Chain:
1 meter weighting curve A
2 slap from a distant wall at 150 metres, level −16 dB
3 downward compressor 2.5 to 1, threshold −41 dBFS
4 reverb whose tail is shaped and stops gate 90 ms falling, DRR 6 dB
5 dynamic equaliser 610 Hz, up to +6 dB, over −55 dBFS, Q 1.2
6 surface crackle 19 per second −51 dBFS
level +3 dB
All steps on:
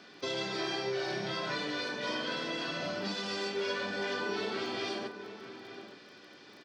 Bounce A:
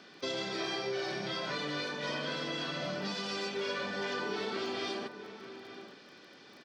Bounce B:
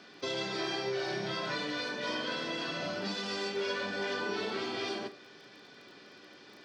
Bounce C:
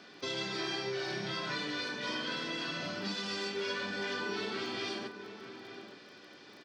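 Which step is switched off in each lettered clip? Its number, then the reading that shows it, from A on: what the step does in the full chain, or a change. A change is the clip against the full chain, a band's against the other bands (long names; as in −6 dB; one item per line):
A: 4, 125 Hz band +1.5 dB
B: 2, change in momentary loudness spread +5 LU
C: 5, 500 Hz band −3.0 dB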